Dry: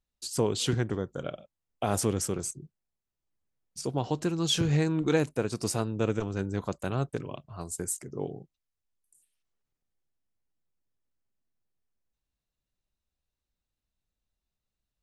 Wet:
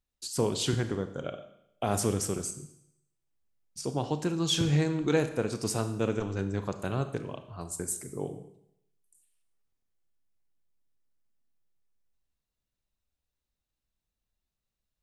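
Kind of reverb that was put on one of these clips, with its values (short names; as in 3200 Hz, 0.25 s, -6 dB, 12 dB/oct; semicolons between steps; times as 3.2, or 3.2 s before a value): Schroeder reverb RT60 0.76 s, combs from 27 ms, DRR 9 dB; gain -1 dB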